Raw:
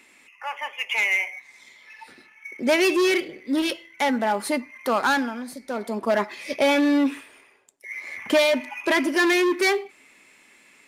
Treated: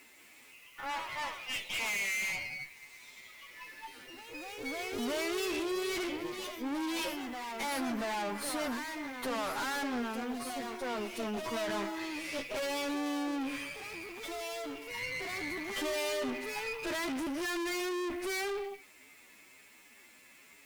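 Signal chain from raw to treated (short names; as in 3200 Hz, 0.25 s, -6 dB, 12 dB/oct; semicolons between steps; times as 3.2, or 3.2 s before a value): time stretch by phase-locked vocoder 1.9×; requantised 10-bit, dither triangular; tube stage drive 34 dB, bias 0.7; echoes that change speed 0.192 s, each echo +2 st, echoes 3, each echo -6 dB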